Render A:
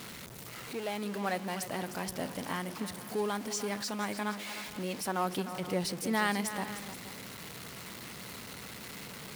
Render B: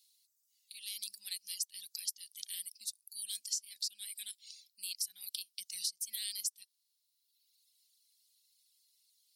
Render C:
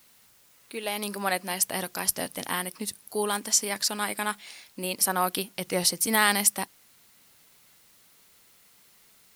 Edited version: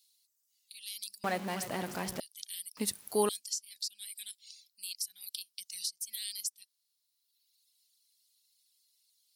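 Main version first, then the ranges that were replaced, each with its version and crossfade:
B
1.24–2.20 s: from A
2.77–3.29 s: from C

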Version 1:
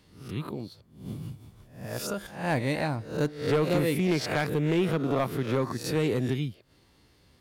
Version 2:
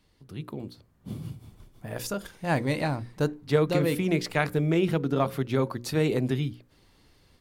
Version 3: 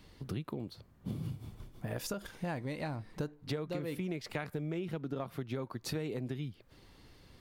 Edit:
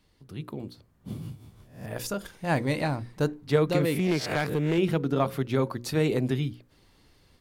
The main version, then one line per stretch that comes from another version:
2
1.21–1.86 s: from 1
3.85–4.78 s: from 1
not used: 3

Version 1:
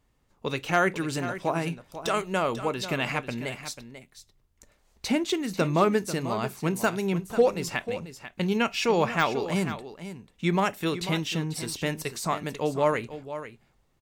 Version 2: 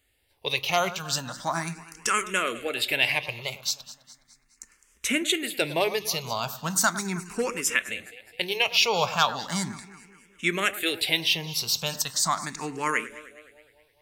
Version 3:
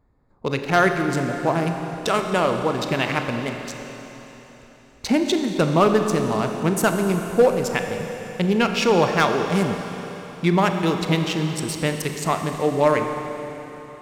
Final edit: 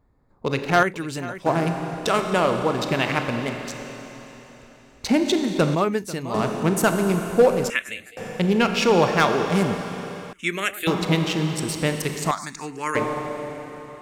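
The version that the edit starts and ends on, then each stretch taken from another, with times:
3
0.83–1.46 s: from 1
5.75–6.34 s: from 1
7.70–8.17 s: from 2
10.33–10.87 s: from 2
12.31–12.95 s: from 2

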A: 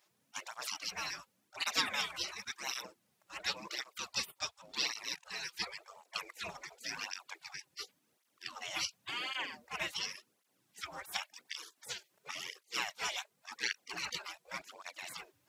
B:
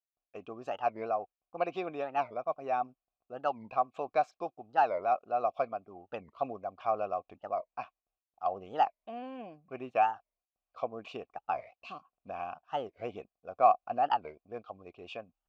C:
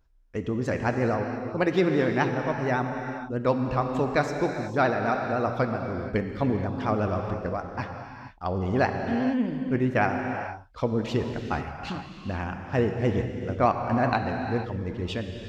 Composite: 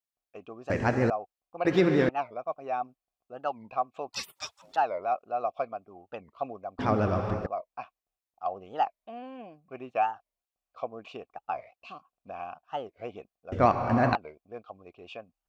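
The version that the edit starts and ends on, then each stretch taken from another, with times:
B
0.70–1.10 s: from C
1.65–2.09 s: from C
4.13–4.76 s: from A
6.79–7.46 s: from C
13.52–14.15 s: from C

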